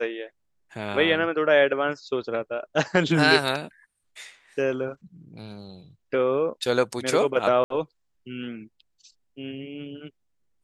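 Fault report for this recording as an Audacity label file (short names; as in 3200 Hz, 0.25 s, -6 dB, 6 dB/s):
7.640000	7.700000	gap 63 ms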